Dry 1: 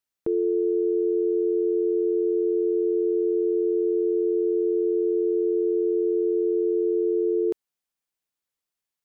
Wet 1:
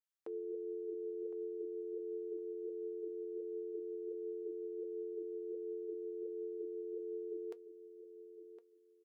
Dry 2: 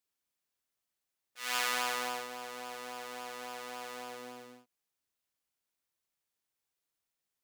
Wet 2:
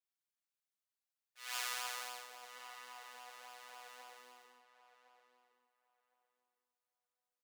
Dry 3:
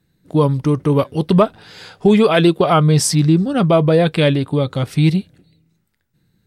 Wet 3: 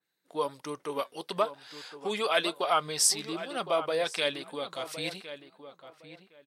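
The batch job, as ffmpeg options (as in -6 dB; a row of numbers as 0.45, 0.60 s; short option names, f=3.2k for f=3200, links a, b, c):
-filter_complex "[0:a]highpass=670,flanger=delay=0.2:depth=4.2:regen=76:speed=1.4:shape=sinusoidal,asplit=2[a][b];[b]adelay=1062,lowpass=f=2.3k:p=1,volume=-11.5dB,asplit=2[c][d];[d]adelay=1062,lowpass=f=2.3k:p=1,volume=0.21,asplit=2[e][f];[f]adelay=1062,lowpass=f=2.3k:p=1,volume=0.21[g];[a][c][e][g]amix=inputs=4:normalize=0,adynamicequalizer=threshold=0.00708:dfrequency=3500:dqfactor=0.7:tfrequency=3500:tqfactor=0.7:attack=5:release=100:ratio=0.375:range=2.5:mode=boostabove:tftype=highshelf,volume=-5dB"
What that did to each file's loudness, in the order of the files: -19.5, -8.0, -15.0 LU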